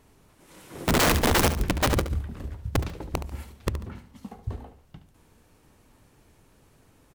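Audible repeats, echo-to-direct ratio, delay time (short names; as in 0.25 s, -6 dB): 2, -11.0 dB, 71 ms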